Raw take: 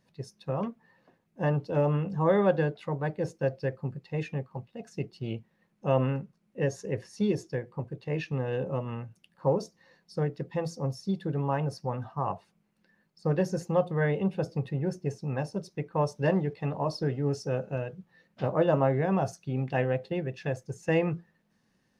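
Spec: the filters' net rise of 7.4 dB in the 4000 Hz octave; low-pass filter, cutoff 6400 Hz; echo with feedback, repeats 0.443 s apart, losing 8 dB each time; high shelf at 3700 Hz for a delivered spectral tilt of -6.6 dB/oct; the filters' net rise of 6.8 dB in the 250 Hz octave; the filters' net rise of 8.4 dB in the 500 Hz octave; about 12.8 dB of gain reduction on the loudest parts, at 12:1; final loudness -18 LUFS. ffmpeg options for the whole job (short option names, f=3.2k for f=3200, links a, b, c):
-af "lowpass=6.4k,equalizer=f=250:t=o:g=8,equalizer=f=500:t=o:g=7.5,highshelf=f=3.7k:g=4,equalizer=f=4k:t=o:g=8.5,acompressor=threshold=-24dB:ratio=12,aecho=1:1:443|886|1329|1772|2215:0.398|0.159|0.0637|0.0255|0.0102,volume=12.5dB"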